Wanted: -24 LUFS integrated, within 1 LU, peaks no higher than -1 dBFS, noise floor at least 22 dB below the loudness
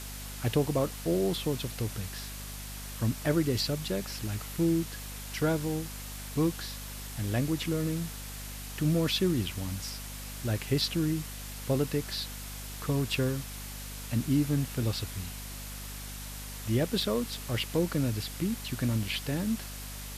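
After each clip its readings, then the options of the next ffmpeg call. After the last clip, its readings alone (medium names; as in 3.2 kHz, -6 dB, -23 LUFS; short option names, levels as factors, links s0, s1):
hum 50 Hz; highest harmonic 250 Hz; hum level -41 dBFS; noise floor -41 dBFS; noise floor target -54 dBFS; loudness -32.0 LUFS; peak level -15.5 dBFS; loudness target -24.0 LUFS
-> -af "bandreject=f=50:t=h:w=4,bandreject=f=100:t=h:w=4,bandreject=f=150:t=h:w=4,bandreject=f=200:t=h:w=4,bandreject=f=250:t=h:w=4"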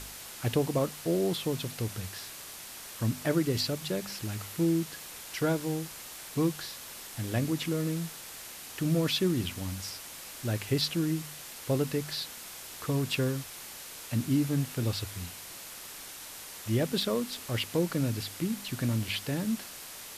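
hum not found; noise floor -45 dBFS; noise floor target -54 dBFS
-> -af "afftdn=nr=9:nf=-45"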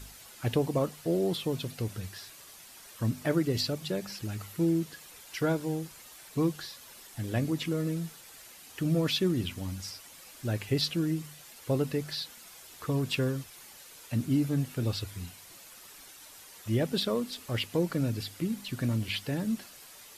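noise floor -51 dBFS; noise floor target -54 dBFS
-> -af "afftdn=nr=6:nf=-51"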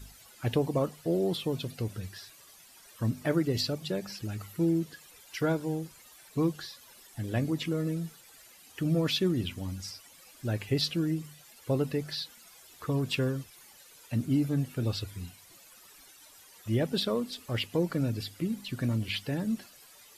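noise floor -55 dBFS; loudness -31.5 LUFS; peak level -15.5 dBFS; loudness target -24.0 LUFS
-> -af "volume=2.37"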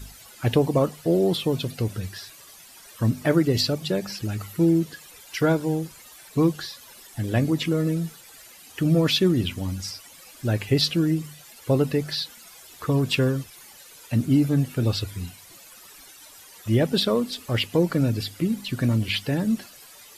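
loudness -24.0 LUFS; peak level -8.0 dBFS; noise floor -48 dBFS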